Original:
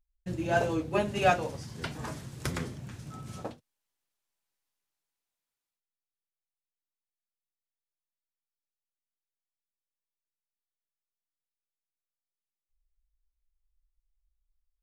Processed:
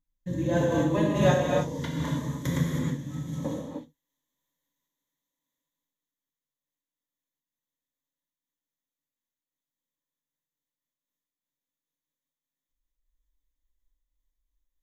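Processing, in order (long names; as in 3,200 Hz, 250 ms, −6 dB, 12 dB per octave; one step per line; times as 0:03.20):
parametric band 220 Hz +12 dB 1.5 octaves
pitch vibrato 2.2 Hz 12 cents
EQ curve with evenly spaced ripples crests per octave 1.1, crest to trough 13 dB
reverb whose tail is shaped and stops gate 340 ms flat, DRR −3.5 dB
amplitude modulation by smooth noise, depth 60%
level −3 dB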